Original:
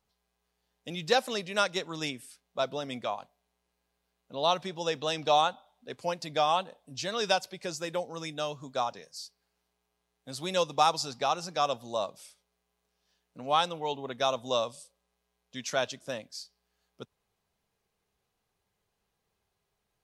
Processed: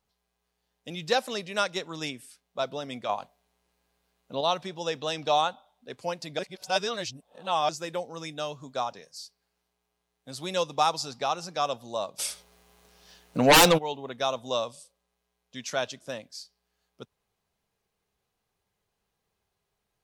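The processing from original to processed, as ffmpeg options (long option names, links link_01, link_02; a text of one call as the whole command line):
ffmpeg -i in.wav -filter_complex "[0:a]asettb=1/sr,asplit=3[link_01][link_02][link_03];[link_01]atrim=end=3.094[link_04];[link_02]atrim=start=3.09:end=4.41,asetpts=PTS-STARTPTS,afade=type=in:duration=0.004:curve=qsin,afade=type=out:start_time=1.316:duration=0.004:curve=qsin,acontrast=37[link_05];[link_03]atrim=start=4.406[link_06];[link_04][link_05]acrossfade=duration=0.004:curve1=hsin:curve2=qsin[link_07];[link_07][link_06]acrossfade=duration=0.004:curve1=qsin:curve2=hsin,asplit=3[link_08][link_09][link_10];[link_08]afade=type=out:start_time=12.18:duration=0.02[link_11];[link_09]aeval=exprs='0.251*sin(PI/2*6.31*val(0)/0.251)':channel_layout=same,afade=type=in:start_time=12.18:duration=0.02,afade=type=out:start_time=13.77:duration=0.02[link_12];[link_10]afade=type=in:start_time=13.77:duration=0.02[link_13];[link_11][link_12][link_13]amix=inputs=3:normalize=0,asplit=3[link_14][link_15][link_16];[link_14]atrim=end=6.392[link_17];[link_15]atrim=start=6.388:end=7.692,asetpts=PTS-STARTPTS,areverse[link_18];[link_16]atrim=start=7.688[link_19];[link_17][link_18]acrossfade=duration=0.004:curve1=hsin:curve2=hsin[link_20];[link_20][link_19]acrossfade=duration=0.004:curve1=hsin:curve2=hsin" out.wav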